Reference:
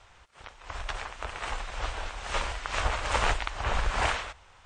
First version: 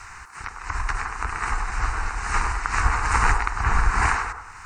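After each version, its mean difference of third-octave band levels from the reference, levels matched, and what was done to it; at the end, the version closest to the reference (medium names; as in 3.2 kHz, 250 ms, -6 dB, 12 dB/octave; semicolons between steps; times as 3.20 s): 4.0 dB: in parallel at -1.5 dB: compression, threshold -36 dBFS, peak gain reduction 14 dB; on the sum: static phaser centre 1.4 kHz, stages 4; feedback echo behind a band-pass 100 ms, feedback 33%, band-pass 660 Hz, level -4 dB; tape noise reduction on one side only encoder only; trim +7 dB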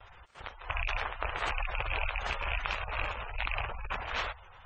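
8.5 dB: rattle on loud lows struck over -39 dBFS, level -20 dBFS; spectral gate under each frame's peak -20 dB strong; gate with hold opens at -51 dBFS; compressor with a negative ratio -34 dBFS, ratio -1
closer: first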